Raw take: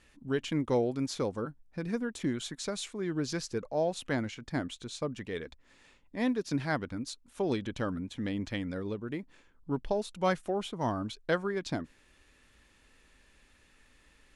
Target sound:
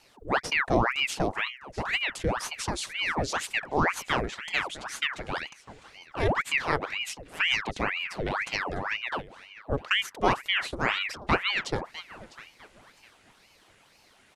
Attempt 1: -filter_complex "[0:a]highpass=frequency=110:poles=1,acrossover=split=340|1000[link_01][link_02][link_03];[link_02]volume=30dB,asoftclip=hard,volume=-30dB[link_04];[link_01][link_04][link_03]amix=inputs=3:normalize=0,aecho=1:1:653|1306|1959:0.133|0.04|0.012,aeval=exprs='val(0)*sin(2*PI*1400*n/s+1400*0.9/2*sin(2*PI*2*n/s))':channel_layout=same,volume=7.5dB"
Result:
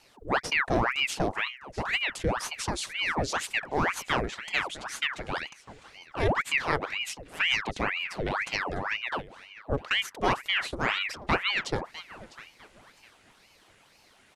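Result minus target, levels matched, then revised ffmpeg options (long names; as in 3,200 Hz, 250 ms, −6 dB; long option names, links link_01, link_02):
gain into a clipping stage and back: distortion +31 dB
-filter_complex "[0:a]highpass=frequency=110:poles=1,acrossover=split=340|1000[link_01][link_02][link_03];[link_02]volume=21dB,asoftclip=hard,volume=-21dB[link_04];[link_01][link_04][link_03]amix=inputs=3:normalize=0,aecho=1:1:653|1306|1959:0.133|0.04|0.012,aeval=exprs='val(0)*sin(2*PI*1400*n/s+1400*0.9/2*sin(2*PI*2*n/s))':channel_layout=same,volume=7.5dB"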